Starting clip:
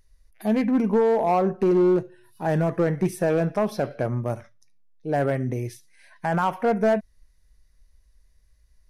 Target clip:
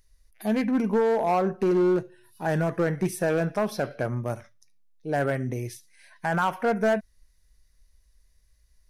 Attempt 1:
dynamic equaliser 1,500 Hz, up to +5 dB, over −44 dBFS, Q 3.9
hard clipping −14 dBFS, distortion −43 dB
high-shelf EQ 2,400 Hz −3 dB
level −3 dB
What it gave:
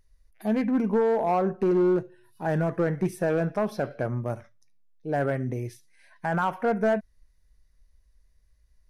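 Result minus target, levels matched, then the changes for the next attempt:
4,000 Hz band −5.5 dB
change: high-shelf EQ 2,400 Hz +6 dB

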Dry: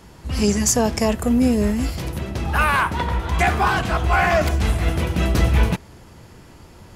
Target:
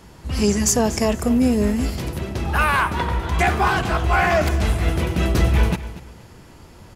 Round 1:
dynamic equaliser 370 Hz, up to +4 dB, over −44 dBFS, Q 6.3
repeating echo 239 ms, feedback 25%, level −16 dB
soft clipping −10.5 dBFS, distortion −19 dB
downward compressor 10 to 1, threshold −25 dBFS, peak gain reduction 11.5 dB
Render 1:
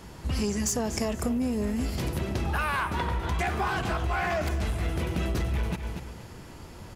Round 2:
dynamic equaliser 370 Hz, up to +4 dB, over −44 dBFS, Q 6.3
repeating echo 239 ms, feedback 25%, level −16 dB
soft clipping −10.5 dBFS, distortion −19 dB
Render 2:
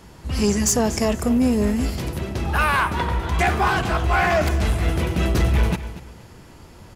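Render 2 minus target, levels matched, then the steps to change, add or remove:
soft clipping: distortion +11 dB
change: soft clipping −3.5 dBFS, distortion −31 dB

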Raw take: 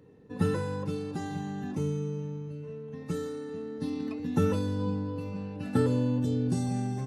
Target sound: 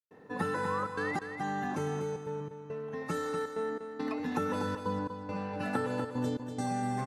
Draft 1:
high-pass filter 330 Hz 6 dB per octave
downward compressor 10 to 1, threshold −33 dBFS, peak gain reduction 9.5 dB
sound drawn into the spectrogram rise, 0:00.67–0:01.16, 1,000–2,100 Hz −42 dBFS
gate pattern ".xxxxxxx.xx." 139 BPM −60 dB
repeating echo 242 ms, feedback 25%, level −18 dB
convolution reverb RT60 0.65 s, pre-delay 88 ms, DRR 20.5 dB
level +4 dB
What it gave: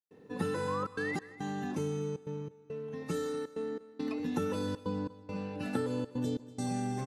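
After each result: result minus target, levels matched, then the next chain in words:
echo-to-direct −9 dB; 1,000 Hz band −5.0 dB
high-pass filter 330 Hz 6 dB per octave
downward compressor 10 to 1, threshold −33 dBFS, peak gain reduction 9.5 dB
sound drawn into the spectrogram rise, 0:00.67–0:01.16, 1,000–2,100 Hz −42 dBFS
gate pattern ".xxxxxxx.xx." 139 BPM −60 dB
repeating echo 242 ms, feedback 25%, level −7.5 dB
convolution reverb RT60 0.65 s, pre-delay 88 ms, DRR 20.5 dB
level +4 dB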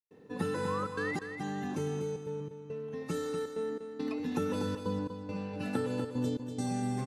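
1,000 Hz band −5.0 dB
high-pass filter 330 Hz 6 dB per octave
flat-topped bell 1,100 Hz +8 dB 2 octaves
downward compressor 10 to 1, threshold −33 dBFS, peak gain reduction 11 dB
sound drawn into the spectrogram rise, 0:00.67–0:01.16, 1,000–2,100 Hz −42 dBFS
gate pattern ".xxxxxxx.xx." 139 BPM −60 dB
repeating echo 242 ms, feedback 25%, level −7.5 dB
convolution reverb RT60 0.65 s, pre-delay 88 ms, DRR 20.5 dB
level +4 dB

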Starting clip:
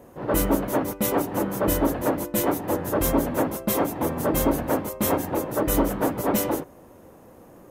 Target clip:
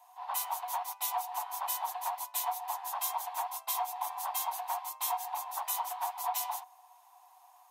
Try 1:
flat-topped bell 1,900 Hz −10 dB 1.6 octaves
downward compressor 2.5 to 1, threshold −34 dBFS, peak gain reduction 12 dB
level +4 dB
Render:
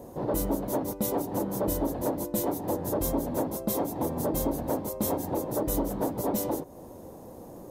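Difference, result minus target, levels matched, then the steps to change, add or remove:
1,000 Hz band −8.0 dB
add first: Chebyshev high-pass with heavy ripple 710 Hz, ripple 9 dB

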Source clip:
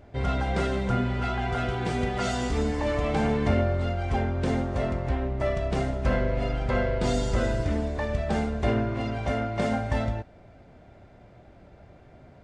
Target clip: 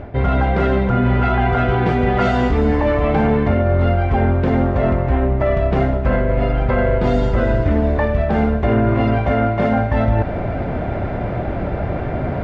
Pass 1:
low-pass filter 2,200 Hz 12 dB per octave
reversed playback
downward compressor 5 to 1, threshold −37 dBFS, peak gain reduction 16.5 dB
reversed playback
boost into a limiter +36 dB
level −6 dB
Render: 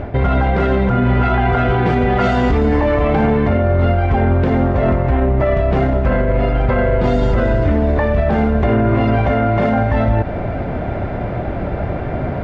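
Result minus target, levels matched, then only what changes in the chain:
downward compressor: peak gain reduction −7 dB
change: downward compressor 5 to 1, threshold −45.5 dBFS, peak gain reduction 23.5 dB

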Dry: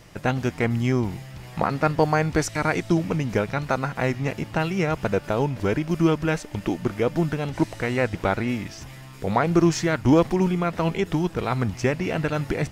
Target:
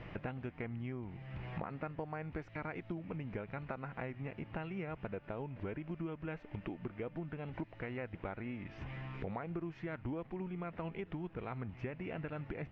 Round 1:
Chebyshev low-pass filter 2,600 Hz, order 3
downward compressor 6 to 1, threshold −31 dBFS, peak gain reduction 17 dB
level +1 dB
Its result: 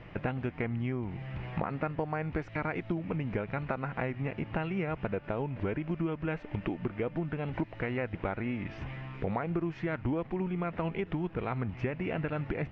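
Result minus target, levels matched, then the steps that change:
downward compressor: peak gain reduction −9 dB
change: downward compressor 6 to 1, threshold −41.5 dBFS, peak gain reduction 25.5 dB

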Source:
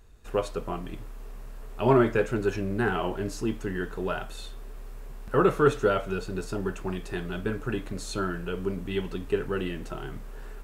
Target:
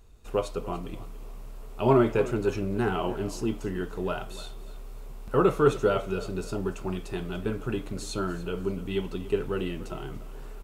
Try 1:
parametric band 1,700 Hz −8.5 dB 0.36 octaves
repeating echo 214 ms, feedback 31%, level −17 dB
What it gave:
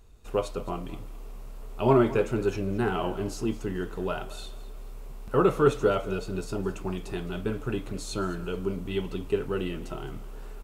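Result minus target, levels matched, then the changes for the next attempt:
echo 76 ms early
change: repeating echo 290 ms, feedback 31%, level −17 dB

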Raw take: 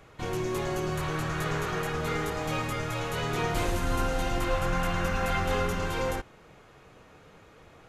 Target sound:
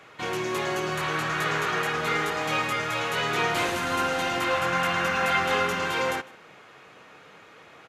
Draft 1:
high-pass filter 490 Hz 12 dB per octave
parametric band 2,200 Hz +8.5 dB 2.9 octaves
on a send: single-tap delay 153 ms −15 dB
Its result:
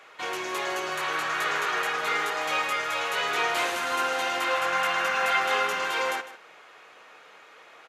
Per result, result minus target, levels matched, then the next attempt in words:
125 Hz band −16.0 dB; echo-to-direct +8 dB
high-pass filter 160 Hz 12 dB per octave
parametric band 2,200 Hz +8.5 dB 2.9 octaves
on a send: single-tap delay 153 ms −15 dB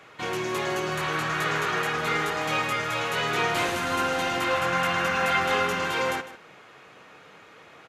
echo-to-direct +8 dB
high-pass filter 160 Hz 12 dB per octave
parametric band 2,200 Hz +8.5 dB 2.9 octaves
on a send: single-tap delay 153 ms −23 dB

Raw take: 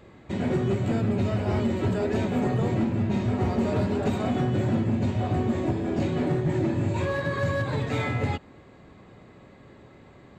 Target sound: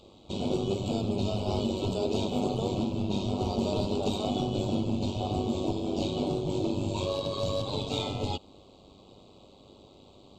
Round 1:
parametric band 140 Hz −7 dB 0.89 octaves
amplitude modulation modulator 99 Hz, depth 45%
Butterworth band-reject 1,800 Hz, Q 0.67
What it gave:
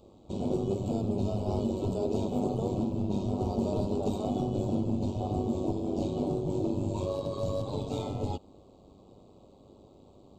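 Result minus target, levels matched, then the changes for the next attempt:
4,000 Hz band −12.0 dB
add after Butterworth band-reject: parametric band 3,200 Hz +14 dB 2.1 octaves

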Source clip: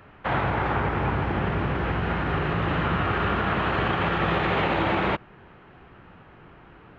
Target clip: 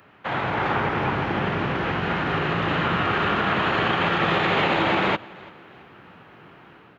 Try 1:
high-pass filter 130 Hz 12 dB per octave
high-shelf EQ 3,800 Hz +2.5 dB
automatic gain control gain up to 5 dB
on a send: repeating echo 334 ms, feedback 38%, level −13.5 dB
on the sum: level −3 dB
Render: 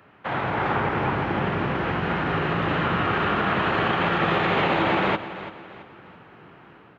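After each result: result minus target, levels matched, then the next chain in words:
echo-to-direct +9 dB; 8,000 Hz band −5.5 dB
high-pass filter 130 Hz 12 dB per octave
high-shelf EQ 3,800 Hz +2.5 dB
automatic gain control gain up to 5 dB
on a send: repeating echo 334 ms, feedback 38%, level −22.5 dB
on the sum: level −3 dB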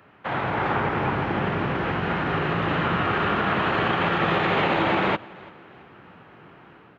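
8,000 Hz band −5.5 dB
high-pass filter 130 Hz 12 dB per octave
high-shelf EQ 3,800 Hz +11 dB
automatic gain control gain up to 5 dB
on a send: repeating echo 334 ms, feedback 38%, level −22.5 dB
on the sum: level −3 dB

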